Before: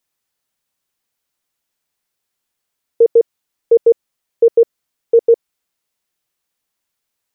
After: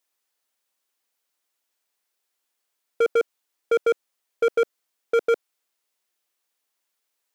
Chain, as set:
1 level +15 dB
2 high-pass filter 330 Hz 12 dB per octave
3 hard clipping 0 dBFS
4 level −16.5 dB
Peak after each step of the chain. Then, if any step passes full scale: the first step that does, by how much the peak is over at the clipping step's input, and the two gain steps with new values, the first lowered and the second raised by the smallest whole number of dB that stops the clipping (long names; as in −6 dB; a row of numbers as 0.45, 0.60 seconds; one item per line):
+11.0, +10.0, 0.0, −16.5 dBFS
step 1, 10.0 dB
step 1 +5 dB, step 4 −6.5 dB